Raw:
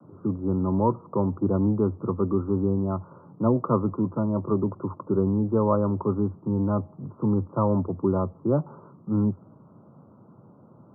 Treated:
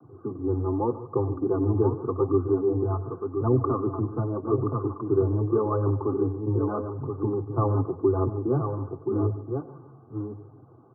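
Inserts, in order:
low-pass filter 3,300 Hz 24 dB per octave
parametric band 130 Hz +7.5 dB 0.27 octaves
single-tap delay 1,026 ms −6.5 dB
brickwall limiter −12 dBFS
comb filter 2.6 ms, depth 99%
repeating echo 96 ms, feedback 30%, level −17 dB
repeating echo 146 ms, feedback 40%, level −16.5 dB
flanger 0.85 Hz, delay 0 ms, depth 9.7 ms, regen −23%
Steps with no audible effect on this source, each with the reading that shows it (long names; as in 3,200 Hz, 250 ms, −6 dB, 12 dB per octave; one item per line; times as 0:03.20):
low-pass filter 3,300 Hz: nothing at its input above 1,400 Hz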